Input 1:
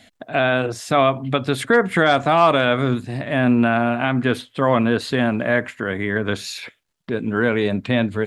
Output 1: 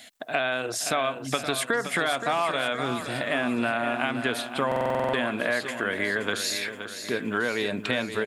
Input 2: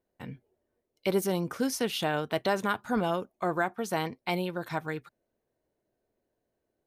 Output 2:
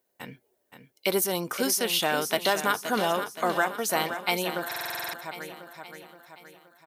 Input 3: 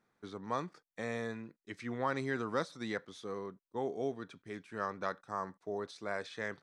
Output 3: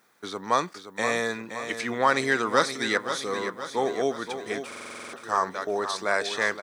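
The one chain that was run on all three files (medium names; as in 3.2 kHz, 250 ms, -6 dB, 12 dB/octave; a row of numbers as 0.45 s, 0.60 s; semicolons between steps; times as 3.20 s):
RIAA curve recording; compression, threshold -23 dBFS; treble shelf 4.7 kHz -6 dB; on a send: feedback delay 522 ms, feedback 52%, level -9.5 dB; on the sum: buffer glitch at 4.67 s, samples 2048, times 9; normalise loudness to -27 LUFS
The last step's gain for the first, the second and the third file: +1.0 dB, +5.5 dB, +13.5 dB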